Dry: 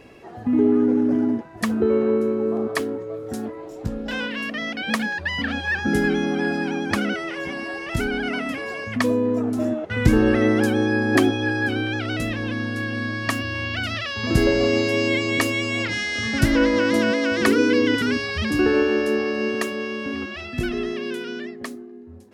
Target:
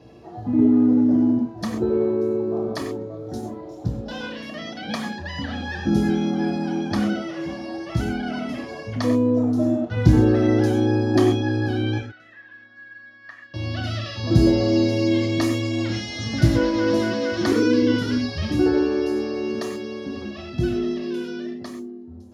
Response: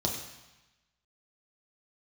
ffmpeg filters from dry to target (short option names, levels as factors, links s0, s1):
-filter_complex "[0:a]asettb=1/sr,asplit=3[s0][s1][s2];[s0]atrim=end=11.984[s3];[s1]atrim=start=11.98:end=13.54,asetpts=PTS-STARTPTS,afade=t=in:d=0.004:c=qsin,afade=t=out:st=1.556:d=0.004:c=qsin,bandpass=f=1700:t=q:w=7.3:csg=0[s4];[s2]atrim=start=13.536[s5];[s3][s4]acrossfade=d=0.004:c1=hsin:c2=qsin[s6];[s6][s5]acrossfade=d=0.004:c1=qsin:c2=hsin[s7];[1:a]atrim=start_sample=2205,atrim=end_sample=6174[s8];[s7][s8]afir=irnorm=-1:irlink=0,volume=0.299"